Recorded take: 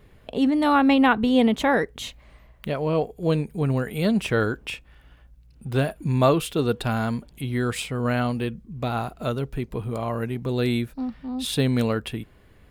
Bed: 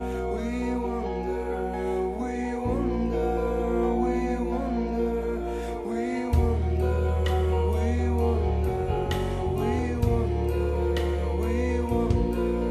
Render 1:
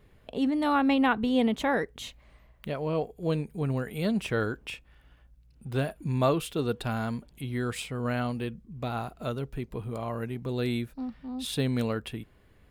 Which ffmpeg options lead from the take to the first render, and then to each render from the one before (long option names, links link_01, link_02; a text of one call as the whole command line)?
ffmpeg -i in.wav -af "volume=-6dB" out.wav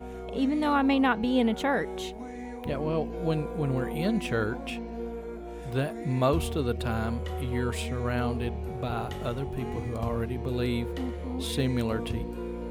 ffmpeg -i in.wav -i bed.wav -filter_complex "[1:a]volume=-9.5dB[link_01];[0:a][link_01]amix=inputs=2:normalize=0" out.wav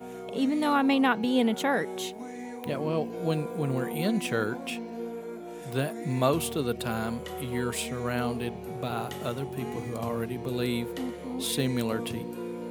ffmpeg -i in.wav -af "highpass=frequency=120:width=0.5412,highpass=frequency=120:width=1.3066,highshelf=frequency=6000:gain=10" out.wav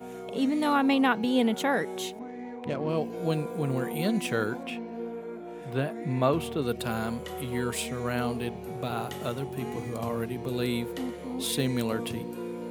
ffmpeg -i in.wav -filter_complex "[0:a]asettb=1/sr,asplit=3[link_01][link_02][link_03];[link_01]atrim=end=2.194[link_04];[link_02]atrim=start=2.19:end=2.89,asetpts=PTS-STARTPTS,afade=type=in:duration=0.004:curve=qsin,afade=type=out:start_time=0.696:duration=0.004:curve=qsin,adynamicsmooth=sensitivity=5.5:basefreq=1800[link_05];[link_03]atrim=start=2.886[link_06];[link_04][link_05]acrossfade=duration=0.004:curve1=hsin:curve2=qsin[link_07];[link_07][link_06]acrossfade=duration=0.004:curve1=qsin:curve2=hsin,asettb=1/sr,asplit=3[link_08][link_09][link_10];[link_08]atrim=end=4.634[link_11];[link_09]atrim=start=4.63:end=6.62,asetpts=PTS-STARTPTS,afade=type=in:duration=0.004:curve=qsin,afade=type=out:start_time=1.986:duration=0.004:curve=qsin,bass=frequency=250:gain=0,treble=frequency=4000:gain=-12[link_12];[link_10]atrim=start=6.616[link_13];[link_11][link_12]acrossfade=duration=0.004:curve1=hsin:curve2=qsin[link_14];[link_14][link_13]acrossfade=duration=0.004:curve1=qsin:curve2=hsin" out.wav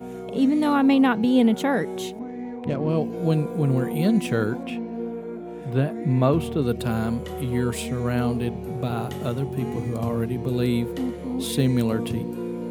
ffmpeg -i in.wav -af "lowshelf=frequency=370:gain=10.5" out.wav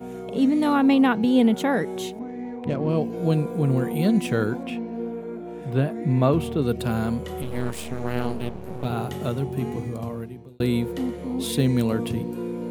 ffmpeg -i in.wav -filter_complex "[0:a]asettb=1/sr,asplit=3[link_01][link_02][link_03];[link_01]atrim=end=7.424[link_04];[link_02]atrim=start=7.42:end=8.85,asetpts=PTS-STARTPTS,afade=type=in:duration=0.004:curve=qsin,afade=type=out:start_time=1.426:duration=0.004:curve=qsin,aeval=exprs='max(val(0),0)':channel_layout=same[link_05];[link_03]atrim=start=8.846[link_06];[link_04][link_05]acrossfade=duration=0.004:curve1=hsin:curve2=qsin[link_07];[link_07][link_06]acrossfade=duration=0.004:curve1=qsin:curve2=hsin,asplit=2[link_08][link_09];[link_08]atrim=end=10.6,asetpts=PTS-STARTPTS,afade=type=out:start_time=9.6:duration=1[link_10];[link_09]atrim=start=10.6,asetpts=PTS-STARTPTS,afade=type=in:duration=0.004:curve=hsin[link_11];[link_10][link_11]concat=n=2:v=0:a=1" out.wav